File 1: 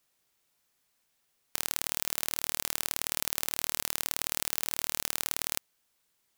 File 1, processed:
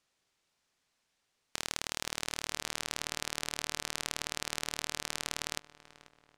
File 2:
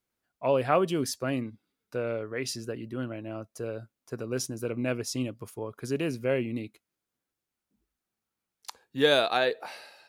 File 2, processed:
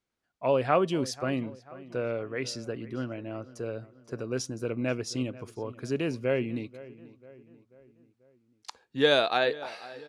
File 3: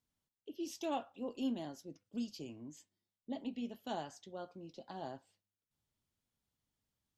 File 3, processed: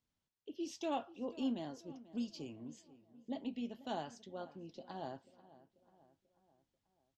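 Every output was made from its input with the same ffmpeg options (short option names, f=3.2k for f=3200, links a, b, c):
-filter_complex "[0:a]lowpass=6.7k,asplit=2[a][b];[b]adelay=489,lowpass=f=2.4k:p=1,volume=-18dB,asplit=2[c][d];[d]adelay=489,lowpass=f=2.4k:p=1,volume=0.52,asplit=2[e][f];[f]adelay=489,lowpass=f=2.4k:p=1,volume=0.52,asplit=2[g][h];[h]adelay=489,lowpass=f=2.4k:p=1,volume=0.52[i];[c][e][g][i]amix=inputs=4:normalize=0[j];[a][j]amix=inputs=2:normalize=0"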